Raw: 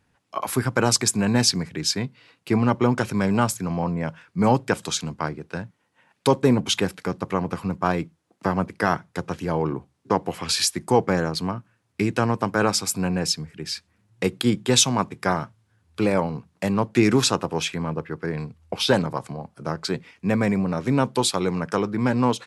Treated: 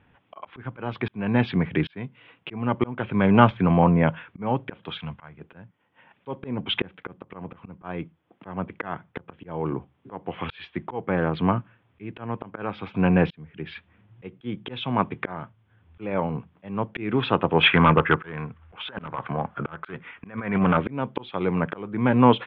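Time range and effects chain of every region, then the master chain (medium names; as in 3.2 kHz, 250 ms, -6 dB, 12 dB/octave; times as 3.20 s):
4.98–5.41 s: peaking EQ 330 Hz -15 dB 1.3 oct + tape noise reduction on one side only encoder only
17.63–20.77 s: peaking EQ 1.4 kHz +12.5 dB 1.2 oct + compressor with a negative ratio -22 dBFS, ratio -0.5 + hard clipper -17 dBFS
whole clip: slow attack 706 ms; Chebyshev low-pass 3.4 kHz, order 6; trim +8 dB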